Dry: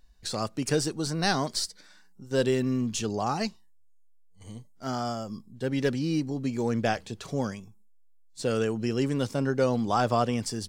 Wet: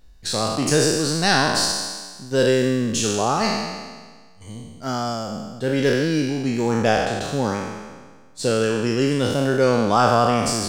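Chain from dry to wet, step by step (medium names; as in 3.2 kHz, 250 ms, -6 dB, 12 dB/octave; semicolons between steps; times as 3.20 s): spectral sustain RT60 1.49 s; trim +5 dB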